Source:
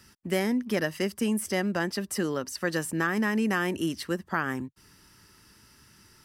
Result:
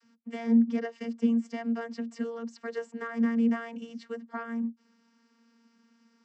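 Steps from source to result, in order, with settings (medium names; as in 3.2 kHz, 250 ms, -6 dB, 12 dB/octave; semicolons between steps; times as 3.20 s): vocoder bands 32, saw 231 Hz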